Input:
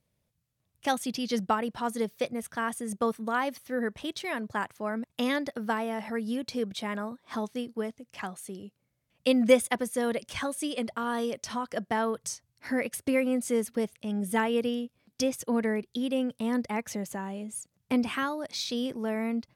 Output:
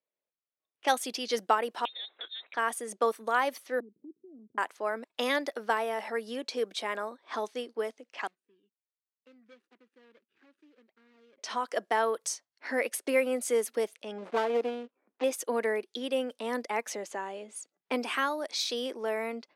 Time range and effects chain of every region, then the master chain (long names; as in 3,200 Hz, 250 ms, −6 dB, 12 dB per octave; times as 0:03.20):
0:01.85–0:02.54: spectral tilt +1.5 dB per octave + downward compressor 10 to 1, threshold −38 dBFS + voice inversion scrambler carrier 3,900 Hz
0:03.80–0:04.58: inverse Chebyshev low-pass filter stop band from 880 Hz, stop band 60 dB + downward compressor 2 to 1, threshold −40 dBFS
0:08.27–0:11.38: running median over 41 samples + guitar amp tone stack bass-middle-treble 6-0-2 + downward compressor 2.5 to 1, threshold −53 dBFS
0:14.18–0:15.24: gap after every zero crossing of 0.17 ms + low-pass filter 1,300 Hz 6 dB per octave + highs frequency-modulated by the lows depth 0.25 ms
whole clip: noise reduction from a noise print of the clip's start 13 dB; high-pass filter 340 Hz 24 dB per octave; low-pass that shuts in the quiet parts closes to 2,900 Hz, open at −30 dBFS; level +2 dB